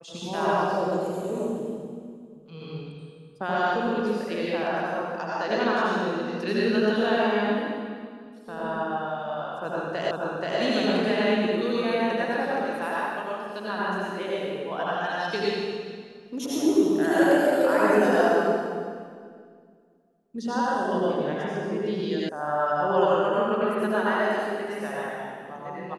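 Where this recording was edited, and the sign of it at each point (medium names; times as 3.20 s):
10.11 s: repeat of the last 0.48 s
22.29 s: sound stops dead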